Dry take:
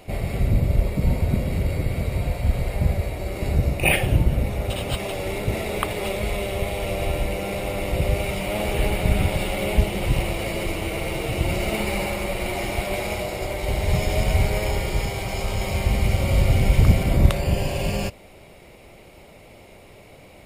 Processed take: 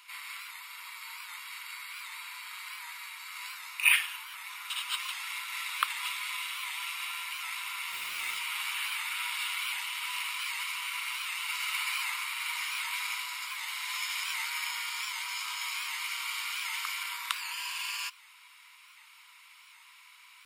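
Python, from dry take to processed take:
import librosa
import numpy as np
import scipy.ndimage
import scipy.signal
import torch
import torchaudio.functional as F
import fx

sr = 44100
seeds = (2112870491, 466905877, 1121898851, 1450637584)

y = scipy.signal.sosfilt(scipy.signal.cheby1(6, 3, 960.0, 'highpass', fs=sr, output='sos'), x)
y = fx.dmg_noise_colour(y, sr, seeds[0], colour='white', level_db=-50.0, at=(7.91, 8.38), fade=0.02)
y = fx.record_warp(y, sr, rpm=78.0, depth_cents=100.0)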